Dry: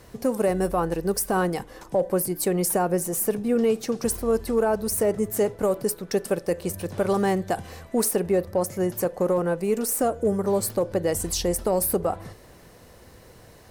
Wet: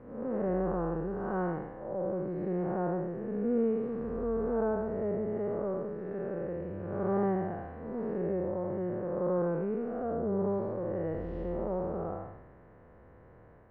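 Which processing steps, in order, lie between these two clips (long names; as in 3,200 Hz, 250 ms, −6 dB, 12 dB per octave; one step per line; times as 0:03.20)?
spectrum smeared in time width 258 ms
low-pass filter 1,700 Hz 24 dB per octave
level −4 dB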